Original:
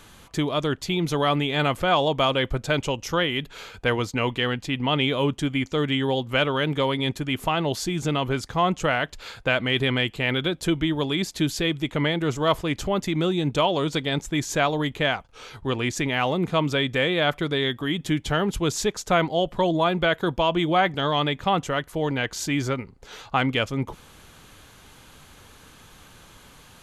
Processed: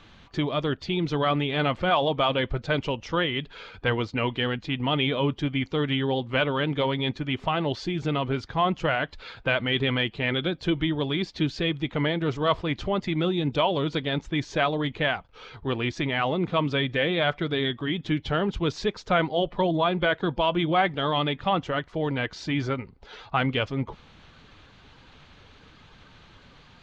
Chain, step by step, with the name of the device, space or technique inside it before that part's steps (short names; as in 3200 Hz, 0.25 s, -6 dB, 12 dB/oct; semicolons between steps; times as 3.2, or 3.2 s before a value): clip after many re-uploads (LPF 4600 Hz 24 dB/oct; bin magnitudes rounded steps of 15 dB); gain -1.5 dB